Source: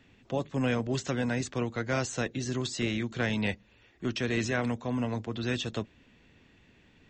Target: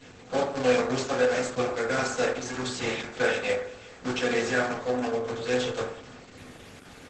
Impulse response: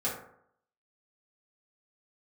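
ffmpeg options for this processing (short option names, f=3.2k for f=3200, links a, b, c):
-filter_complex "[0:a]aeval=exprs='val(0)+0.5*0.00668*sgn(val(0))':c=same,equalizer=f=190:t=o:w=0.91:g=-3.5,acrossover=split=320|1400[a][b][c];[a]acompressor=threshold=-44dB:ratio=16[d];[d][b][c]amix=inputs=3:normalize=0,acrusher=bits=6:dc=4:mix=0:aa=0.000001,asplit=2[e][f];[f]adelay=360,highpass=300,lowpass=3.4k,asoftclip=type=hard:threshold=-26.5dB,volume=-20dB[g];[e][g]amix=inputs=2:normalize=0[h];[1:a]atrim=start_sample=2205,asetrate=43659,aresample=44100[i];[h][i]afir=irnorm=-1:irlink=0" -ar 48000 -c:a libopus -b:a 12k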